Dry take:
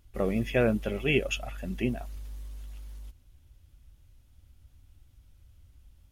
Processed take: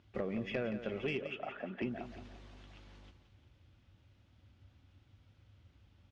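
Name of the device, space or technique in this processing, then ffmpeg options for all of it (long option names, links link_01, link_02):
AM radio: -filter_complex "[0:a]highpass=140,lowpass=3800,acompressor=threshold=-35dB:ratio=10,asoftclip=type=tanh:threshold=-27.5dB,lowpass=6800,equalizer=frequency=97:width_type=o:width=0.26:gain=6,asettb=1/sr,asplit=3[link_01][link_02][link_03];[link_01]atrim=end=1.194[link_04];[link_02]atrim=start=1.19:end=1.82,asetpts=PTS-STARTPTS,afade=type=in:duration=0.004:curve=qsin,afade=type=out:start_time=0.626:duration=0.004:curve=qsin,acrossover=split=230 2700:gain=0.0794 1 0.0708[link_05][link_06][link_07];[link_05][link_06][link_07]amix=inputs=3:normalize=0[link_08];[link_03]atrim=start=1.816[link_09];[link_04][link_08]acrossfade=duration=0.004:curve1=hsin:curve2=qsin[link_10];[link_10][link_09]acrossfade=duration=0.004:curve1=qsin:curve2=hsin,aecho=1:1:174|348|522|696|870:0.282|0.13|0.0596|0.0274|0.0126,volume=2.5dB"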